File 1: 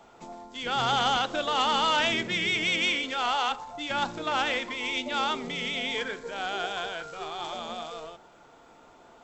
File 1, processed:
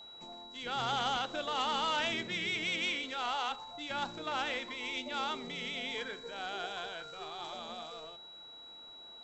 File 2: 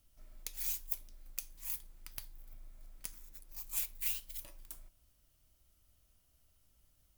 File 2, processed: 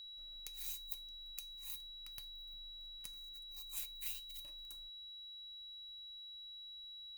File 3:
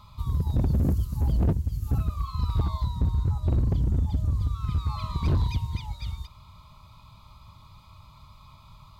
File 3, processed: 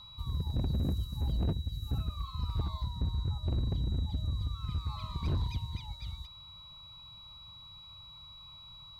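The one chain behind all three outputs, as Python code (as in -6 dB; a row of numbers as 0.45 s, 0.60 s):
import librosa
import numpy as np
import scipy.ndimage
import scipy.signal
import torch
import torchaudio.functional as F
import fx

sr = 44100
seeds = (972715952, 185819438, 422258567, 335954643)

y = x + 10.0 ** (-41.0 / 20.0) * np.sin(2.0 * np.pi * 3900.0 * np.arange(len(x)) / sr)
y = y * 10.0 ** (-8.0 / 20.0)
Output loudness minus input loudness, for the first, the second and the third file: -8.0 LU, -6.5 LU, -8.0 LU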